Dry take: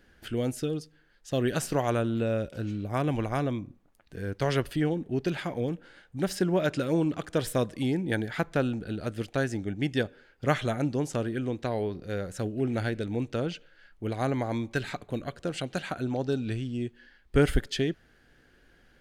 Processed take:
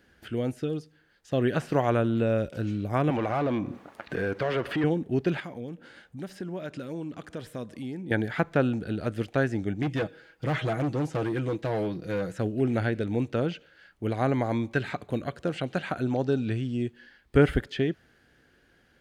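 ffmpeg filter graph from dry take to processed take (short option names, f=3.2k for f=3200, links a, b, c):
-filter_complex "[0:a]asettb=1/sr,asplit=3[a][b][c];[a]atrim=end=3.104[d];[b]atrim=start=3.1:end=4.84,asetpts=PTS-STARTPTS,afade=t=in:d=0.004:c=qsin,afade=t=out:st=1.736:d=0.004:c=qsin,acompressor=threshold=-46dB:ratio=3:attack=3.2:release=140:knee=1:detection=peak,asplit=2[e][f];[f]highpass=f=720:p=1,volume=32dB,asoftclip=type=tanh:threshold=-18.5dB[g];[e][g]amix=inputs=2:normalize=0,lowpass=f=1.7k:p=1,volume=-6dB[h];[c]atrim=start=4.836[i];[d][h]acrossfade=d=0.004:c1=hsin:c2=qsin[j];[j][i]acrossfade=d=0.004:c1=qsin:c2=hsin,asettb=1/sr,asplit=3[k][l][m];[k]atrim=end=5.404[n];[l]atrim=start=5.4:end=8.11,asetpts=PTS-STARTPTS,afade=t=in:d=0.004:c=qsin,afade=t=out:st=2.706:d=0.004:c=qsin,equalizer=f=230:w=4.1:g=5,acompressor=threshold=-46dB:ratio=2:attack=3.2:release=140:knee=1:detection=peak[o];[m]atrim=start=8.106[p];[n][o]acrossfade=d=0.004:c1=hsin:c2=qsin[q];[q][p]acrossfade=d=0.004:c1=qsin:c2=hsin,asettb=1/sr,asplit=3[r][s][t];[r]atrim=end=9.824[u];[s]atrim=start=9.82:end=12.4,asetpts=PTS-STARTPTS,afade=t=in:d=0.004:c=qsin,afade=t=out:st=2.576:d=0.004:c=qsin,aecho=1:1:6.2:0.62,atrim=end_sample=113778,asoftclip=type=hard:threshold=-27dB[v];[t]atrim=start=12.396[w];[u][v]acrossfade=d=0.004:c1=hsin:c2=qsin[x];[x][w]acrossfade=d=0.004:c1=qsin:c2=hsin,acrossover=split=3100[y][z];[z]acompressor=threshold=-55dB:ratio=4:attack=1:release=60[aa];[y][aa]amix=inputs=2:normalize=0,highpass=58,dynaudnorm=f=150:g=17:m=3dB"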